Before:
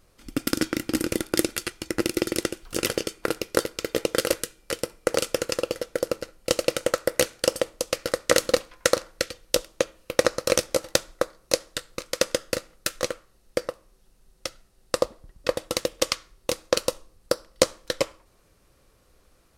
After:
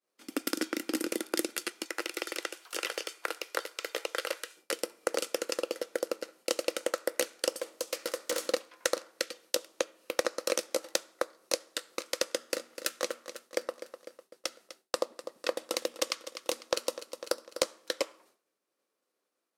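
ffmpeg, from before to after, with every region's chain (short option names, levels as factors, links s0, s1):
-filter_complex "[0:a]asettb=1/sr,asplit=3[s0][s1][s2];[s0]atrim=end=1.854[s3];[s1]atrim=start=1.85:end=4.57,asetpts=PTS-STARTPTS,afade=t=in:d=0.004:c=qsin,afade=t=out:st=2.716:d=0.004:c=qsin,highpass=720,acrossover=split=3900[s4][s5];[s5]acompressor=threshold=0.0224:ratio=4:attack=1:release=60[s6];[s4][s6]amix=inputs=2:normalize=0[s7];[s2]atrim=start=4.566[s8];[s3][s7]acrossfade=d=0.004:c1=hsin:c2=qsin[s9];[s9][s8]acrossfade=d=0.004:c1=qsin:c2=hsin,asettb=1/sr,asplit=3[s10][s11][s12];[s10]atrim=end=7.574[s13];[s11]atrim=start=7.57:end=8.48,asetpts=PTS-STARTPTS,afade=t=in:d=0.004:c=qsin,afade=t=out:st=0.906:d=0.004:c=qsin,bass=f=250:g=0,treble=f=4000:g=3,aeval=exprs='(tanh(11.2*val(0)+0.25)-tanh(0.25))/11.2':c=same[s14];[s12]atrim=start=8.476[s15];[s13][s14]acrossfade=d=0.004:c1=hsin:c2=qsin[s16];[s16][s15]acrossfade=d=0.004:c1=qsin:c2=hsin,asettb=1/sr,asplit=3[s17][s18][s19];[s17]atrim=end=12.254[s20];[s18]atrim=start=12.25:end=17.66,asetpts=PTS-STARTPTS,afade=t=in:d=0.004:c=qsin,afade=t=out:st=5.406:d=0.004:c=qsin,bandreject=f=60:t=h:w=6,bandreject=f=120:t=h:w=6,bandreject=f=180:t=h:w=6,bandreject=f=240:t=h:w=6,aecho=1:1:250|500|750|1000:0.141|0.072|0.0367|0.0187,atrim=end_sample=238581[s21];[s19]atrim=start=17.656[s22];[s20][s21]acrossfade=d=0.004:c1=hsin:c2=qsin[s23];[s23][s22]acrossfade=d=0.004:c1=qsin:c2=hsin,highpass=f=260:w=0.5412,highpass=f=260:w=1.3066,agate=range=0.0224:threshold=0.00282:ratio=3:detection=peak,acompressor=threshold=0.0178:ratio=2,volume=1.19"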